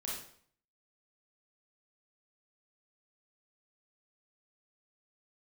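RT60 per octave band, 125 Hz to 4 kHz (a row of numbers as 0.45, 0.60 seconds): 0.65, 0.60, 0.55, 0.55, 0.55, 0.50 seconds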